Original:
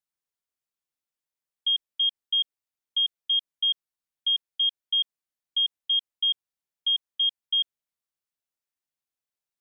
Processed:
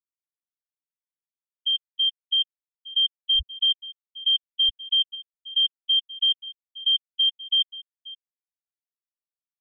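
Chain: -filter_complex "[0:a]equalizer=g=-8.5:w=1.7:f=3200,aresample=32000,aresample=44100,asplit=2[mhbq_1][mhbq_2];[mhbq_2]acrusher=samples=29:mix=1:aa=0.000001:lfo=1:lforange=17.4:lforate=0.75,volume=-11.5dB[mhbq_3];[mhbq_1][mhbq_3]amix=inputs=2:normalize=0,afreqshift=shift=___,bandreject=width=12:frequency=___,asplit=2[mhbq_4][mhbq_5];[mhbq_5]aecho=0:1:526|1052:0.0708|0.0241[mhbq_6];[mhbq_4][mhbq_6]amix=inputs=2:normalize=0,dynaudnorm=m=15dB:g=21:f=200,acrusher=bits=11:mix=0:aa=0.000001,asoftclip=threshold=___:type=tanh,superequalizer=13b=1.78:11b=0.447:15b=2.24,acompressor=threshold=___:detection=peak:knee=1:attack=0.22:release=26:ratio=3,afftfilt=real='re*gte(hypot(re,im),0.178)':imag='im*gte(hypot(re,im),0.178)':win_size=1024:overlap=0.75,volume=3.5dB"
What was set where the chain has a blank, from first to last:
-71, 3000, -13.5dB, -24dB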